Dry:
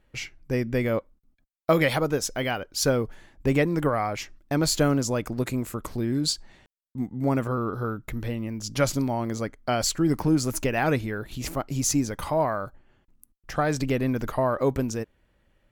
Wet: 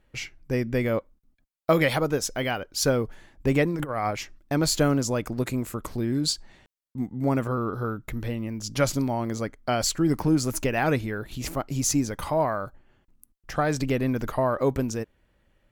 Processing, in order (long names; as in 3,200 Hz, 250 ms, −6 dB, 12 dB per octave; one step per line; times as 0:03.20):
0:03.70–0:04.11: compressor whose output falls as the input rises −27 dBFS, ratio −0.5